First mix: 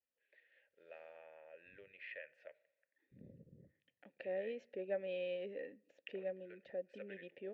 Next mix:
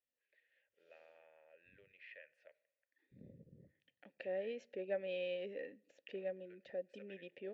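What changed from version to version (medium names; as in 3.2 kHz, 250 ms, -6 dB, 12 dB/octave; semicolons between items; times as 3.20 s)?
first voice -8.0 dB; master: add peaking EQ 11 kHz +10.5 dB 2.1 oct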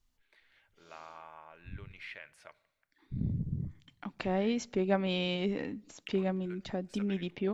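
master: remove vowel filter e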